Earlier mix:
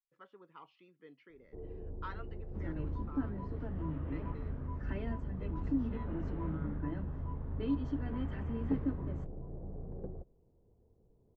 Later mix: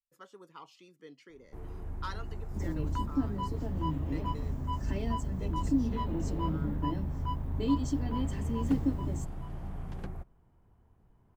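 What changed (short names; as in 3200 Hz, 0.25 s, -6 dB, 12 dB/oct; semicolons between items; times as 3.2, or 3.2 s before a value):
first sound: remove synth low-pass 480 Hz, resonance Q 3.6; second sound: add bell 1400 Hz -12 dB 0.4 oct; master: remove ladder low-pass 3300 Hz, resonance 20%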